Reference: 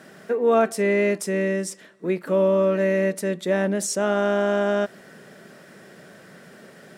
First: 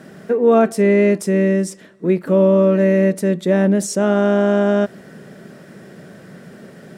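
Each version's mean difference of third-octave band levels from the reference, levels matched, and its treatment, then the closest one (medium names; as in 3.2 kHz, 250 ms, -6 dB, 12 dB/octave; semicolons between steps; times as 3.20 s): 3.5 dB: bass shelf 400 Hz +11.5 dB; trim +1 dB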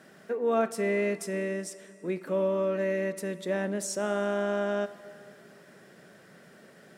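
1.5 dB: plate-style reverb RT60 2.6 s, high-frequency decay 0.75×, DRR 14 dB; trim -7.5 dB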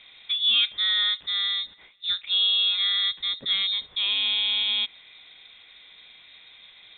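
14.0 dB: frequency inversion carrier 3.9 kHz; trim -3.5 dB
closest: second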